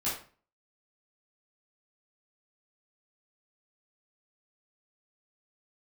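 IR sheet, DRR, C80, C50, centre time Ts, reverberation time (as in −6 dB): −10.0 dB, 10.0 dB, 4.0 dB, 39 ms, 0.40 s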